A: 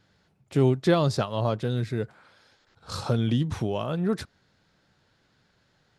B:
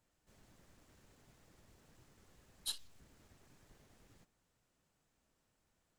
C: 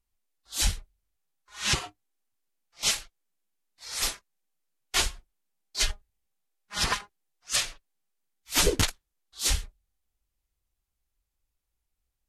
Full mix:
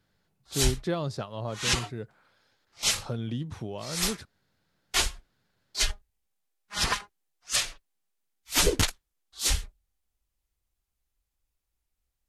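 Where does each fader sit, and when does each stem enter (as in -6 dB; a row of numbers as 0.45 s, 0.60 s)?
-8.5 dB, mute, 0.0 dB; 0.00 s, mute, 0.00 s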